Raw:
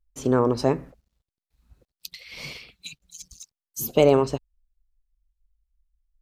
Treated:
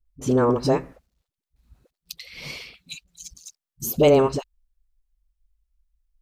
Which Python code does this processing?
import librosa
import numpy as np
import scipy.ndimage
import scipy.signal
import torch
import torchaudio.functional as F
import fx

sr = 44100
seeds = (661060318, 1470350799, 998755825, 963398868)

y = fx.dispersion(x, sr, late='highs', ms=57.0, hz=360.0)
y = F.gain(torch.from_numpy(y), 1.5).numpy()